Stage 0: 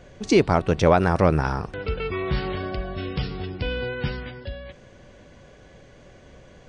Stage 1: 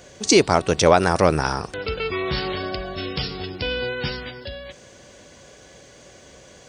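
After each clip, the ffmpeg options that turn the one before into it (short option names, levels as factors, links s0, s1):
-af "highpass=48,bass=f=250:g=-6,treble=f=4000:g=14,volume=1.41"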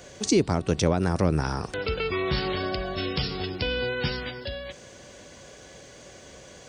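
-filter_complex "[0:a]acrossover=split=320[s0][s1];[s1]acompressor=threshold=0.0501:ratio=10[s2];[s0][s2]amix=inputs=2:normalize=0"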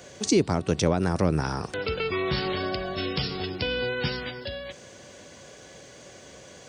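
-af "highpass=76"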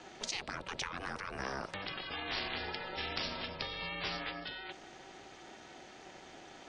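-filter_complex "[0:a]acrossover=split=320 4600:gain=0.141 1 0.2[s0][s1][s2];[s0][s1][s2]amix=inputs=3:normalize=0,aeval=exprs='val(0)*sin(2*PI*200*n/s)':c=same,afftfilt=real='re*lt(hypot(re,im),0.0562)':imag='im*lt(hypot(re,im),0.0562)':win_size=1024:overlap=0.75"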